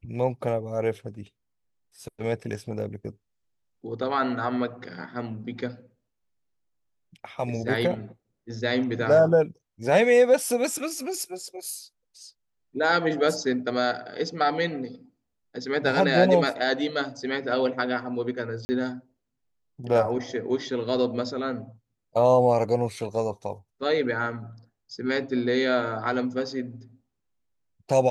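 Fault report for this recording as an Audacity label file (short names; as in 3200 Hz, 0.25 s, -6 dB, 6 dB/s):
18.650000	18.690000	gap 40 ms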